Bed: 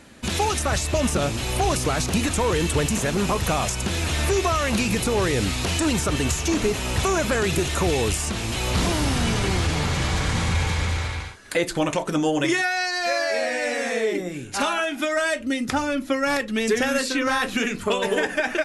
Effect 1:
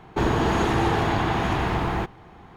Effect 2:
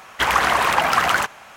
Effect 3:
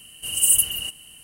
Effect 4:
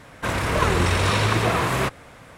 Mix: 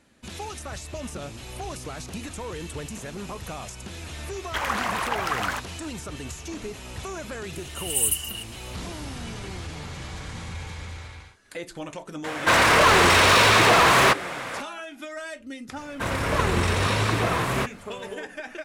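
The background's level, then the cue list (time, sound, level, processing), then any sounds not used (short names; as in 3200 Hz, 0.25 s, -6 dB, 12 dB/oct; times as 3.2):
bed -13 dB
4.34 add 2 -9.5 dB
7.53 add 3 -6 dB
12.24 add 4 -3 dB + overdrive pedal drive 25 dB, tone 5900 Hz, clips at -6 dBFS
15.77 add 4 -3 dB
not used: 1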